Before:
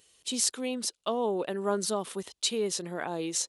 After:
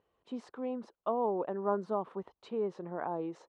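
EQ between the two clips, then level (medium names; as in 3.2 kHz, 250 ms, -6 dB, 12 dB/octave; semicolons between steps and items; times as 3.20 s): resonant low-pass 1 kHz, resonance Q 1.8; -4.5 dB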